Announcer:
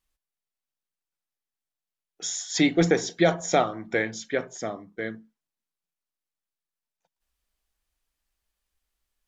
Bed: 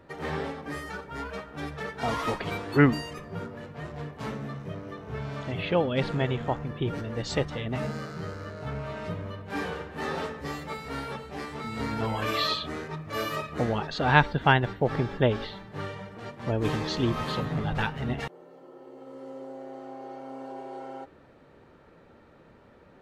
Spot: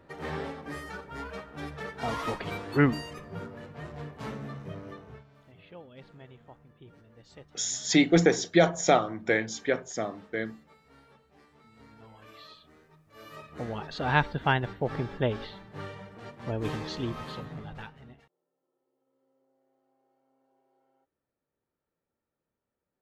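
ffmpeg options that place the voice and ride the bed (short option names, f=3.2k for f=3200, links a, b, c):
-filter_complex "[0:a]adelay=5350,volume=0dB[a];[1:a]volume=15.5dB,afade=t=out:st=4.9:d=0.34:silence=0.1,afade=t=in:st=13.14:d=0.88:silence=0.11885,afade=t=out:st=16.65:d=1.63:silence=0.0398107[b];[a][b]amix=inputs=2:normalize=0"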